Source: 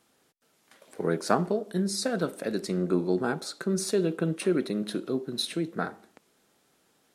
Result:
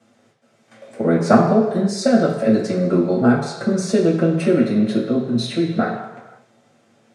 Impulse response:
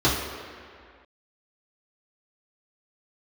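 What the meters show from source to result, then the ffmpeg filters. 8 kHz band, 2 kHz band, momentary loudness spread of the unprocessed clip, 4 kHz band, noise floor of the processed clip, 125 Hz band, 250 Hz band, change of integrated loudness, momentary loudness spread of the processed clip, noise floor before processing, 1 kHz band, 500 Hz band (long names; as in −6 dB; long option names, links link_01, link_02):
+2.0 dB, +8.5 dB, 6 LU, +3.5 dB, −59 dBFS, +11.5 dB, +12.5 dB, +11.0 dB, 7 LU, −68 dBFS, +10.5 dB, +10.5 dB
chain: -filter_complex "[0:a]lowpass=7300[link_01];[1:a]atrim=start_sample=2205,asetrate=79380,aresample=44100[link_02];[link_01][link_02]afir=irnorm=-1:irlink=0,volume=-5dB"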